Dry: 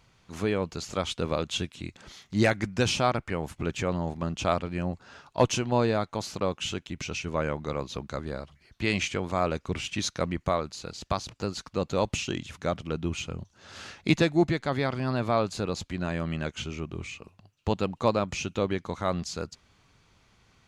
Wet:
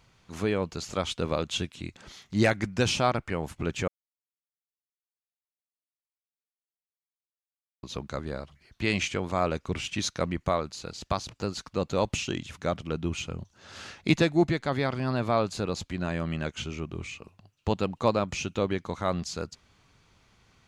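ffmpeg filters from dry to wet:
ffmpeg -i in.wav -filter_complex "[0:a]asplit=3[link_01][link_02][link_03];[link_01]atrim=end=3.88,asetpts=PTS-STARTPTS,afade=type=out:start_time=3.876:duration=0.004:curve=hsin[link_04];[link_02]atrim=start=3.88:end=7.83,asetpts=PTS-STARTPTS,volume=0[link_05];[link_03]atrim=start=7.83,asetpts=PTS-STARTPTS,afade=type=in:duration=0.004:curve=hsin[link_06];[link_04][link_05][link_06]concat=n=3:v=0:a=1" out.wav

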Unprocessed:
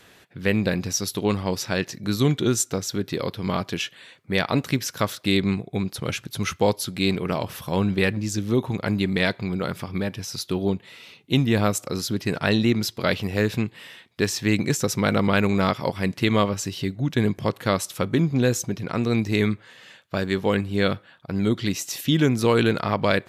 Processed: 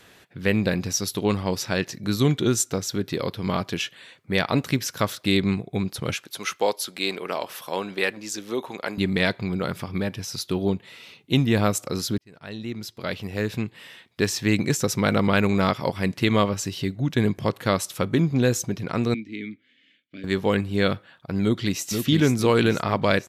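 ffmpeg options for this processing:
ffmpeg -i in.wav -filter_complex "[0:a]asettb=1/sr,asplit=3[link_01][link_02][link_03];[link_01]atrim=end=6.144[link_04];[link_02]atrim=start=6.14:end=8.98,asetpts=PTS-STARTPTS,afade=type=in:duration=0.004:curve=qsin,afade=type=out:start_time=2.836:duration=0.004:curve=qsin,highpass=430[link_05];[link_03]atrim=start=8.976[link_06];[link_04][link_05]acrossfade=duration=0.004:curve1=hsin:curve2=qsin[link_07];[link_07][link_06]acrossfade=duration=0.004:curve1=qsin:curve2=hsin,asettb=1/sr,asplit=3[link_08][link_09][link_10];[link_08]atrim=end=19.144[link_11];[link_09]atrim=start=19.14:end=20.24,asetpts=PTS-STARTPTS,afade=type=in:duration=0.004:curve=qsin,afade=type=out:start_time=1.096:duration=0.004:curve=qsin,asplit=3[link_12][link_13][link_14];[link_12]bandpass=frequency=270:width_type=q:width=8,volume=0dB[link_15];[link_13]bandpass=frequency=2290:width_type=q:width=8,volume=-6dB[link_16];[link_14]bandpass=frequency=3010:width_type=q:width=8,volume=-9dB[link_17];[link_15][link_16][link_17]amix=inputs=3:normalize=0[link_18];[link_10]atrim=start=20.236[link_19];[link_11][link_18]acrossfade=duration=0.004:curve1=hsin:curve2=qsin[link_20];[link_20][link_19]acrossfade=duration=0.004:curve1=qsin:curve2=hsin,asplit=2[link_21][link_22];[link_22]afade=type=in:start_time=21.43:duration=0.01,afade=type=out:start_time=21.86:duration=0.01,aecho=0:1:480|960|1440|1920|2400|2880:0.530884|0.265442|0.132721|0.0663606|0.0331803|0.0165901[link_23];[link_21][link_23]amix=inputs=2:normalize=0,asplit=2[link_24][link_25];[link_24]atrim=end=12.18,asetpts=PTS-STARTPTS,afade=type=out:start_time=12.176:duration=0.004:curve=hsin[link_26];[link_25]atrim=start=12.18,asetpts=PTS-STARTPTS,afade=type=in:duration=2.03[link_27];[link_26][link_27]concat=n=2:v=0:a=1" out.wav

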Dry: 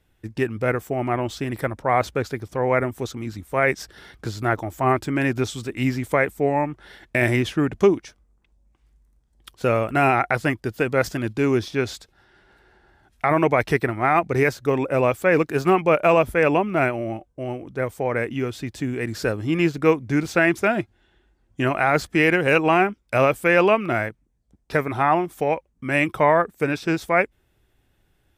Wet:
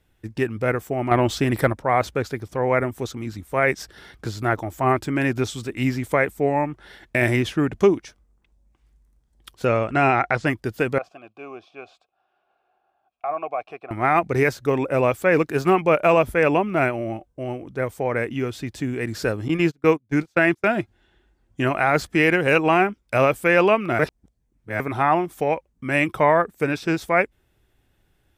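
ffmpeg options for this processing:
ffmpeg -i in.wav -filter_complex "[0:a]asettb=1/sr,asplit=3[link_01][link_02][link_03];[link_01]atrim=end=1.114[link_04];[link_02]atrim=start=1.11:end=1.73,asetpts=PTS-STARTPTS,afade=type=in:duration=0.004:curve=qsin,afade=type=out:start_time=0.616:duration=0.004:curve=qsin,acontrast=61[link_05];[link_03]atrim=start=1.726[link_06];[link_04][link_05]acrossfade=duration=0.004:curve1=hsin:curve2=qsin[link_07];[link_07][link_06]acrossfade=duration=0.004:curve1=qsin:curve2=hsin,asettb=1/sr,asplit=3[link_08][link_09][link_10];[link_08]atrim=end=9.654[link_11];[link_09]atrim=start=9.65:end=10.47,asetpts=PTS-STARTPTS,afade=type=in:duration=0.004:curve=qsin,afade=type=out:start_time=0.816:duration=0.004:curve=qsin,lowpass=frequency=7300:width=0.5412,lowpass=frequency=7300:width=1.3066[link_12];[link_10]atrim=start=10.466[link_13];[link_11][link_12]acrossfade=duration=0.004:curve1=hsin:curve2=qsin[link_14];[link_14][link_13]acrossfade=duration=0.004:curve1=qsin:curve2=hsin,asettb=1/sr,asplit=3[link_15][link_16][link_17];[link_15]atrim=end=10.984[link_18];[link_16]atrim=start=10.98:end=13.91,asetpts=PTS-STARTPTS,afade=type=in:duration=0.004:curve=qsin,afade=type=out:start_time=2.926:duration=0.004:curve=qsin,asplit=3[link_19][link_20][link_21];[link_19]bandpass=frequency=730:width_type=q:width=8,volume=0dB[link_22];[link_20]bandpass=frequency=1090:width_type=q:width=8,volume=-6dB[link_23];[link_21]bandpass=frequency=2440:width_type=q:width=8,volume=-9dB[link_24];[link_22][link_23][link_24]amix=inputs=3:normalize=0[link_25];[link_17]atrim=start=13.906[link_26];[link_18][link_25]acrossfade=duration=0.004:curve1=hsin:curve2=qsin[link_27];[link_27][link_26]acrossfade=duration=0.004:curve1=qsin:curve2=hsin,asettb=1/sr,asplit=3[link_28][link_29][link_30];[link_28]atrim=end=19.484[link_31];[link_29]atrim=start=19.48:end=20.68,asetpts=PTS-STARTPTS,afade=type=in:duration=0.004:curve=qsin,afade=type=out:start_time=1.196:duration=0.004:curve=qsin,agate=range=-31dB:threshold=-24dB:ratio=16:release=100:detection=peak[link_32];[link_30]atrim=start=20.676[link_33];[link_31][link_32]acrossfade=duration=0.004:curve1=hsin:curve2=qsin[link_34];[link_34][link_33]acrossfade=duration=0.004:curve1=qsin:curve2=hsin,asplit=3[link_35][link_36][link_37];[link_35]atrim=end=23.992[link_38];[link_36]atrim=start=23.988:end=24.802,asetpts=PTS-STARTPTS,areverse[link_39];[link_37]atrim=start=24.798[link_40];[link_38][link_39]acrossfade=duration=0.004:curve1=hsin:curve2=hsin[link_41];[link_41][link_40]acrossfade=duration=0.004:curve1=hsin:curve2=hsin" out.wav

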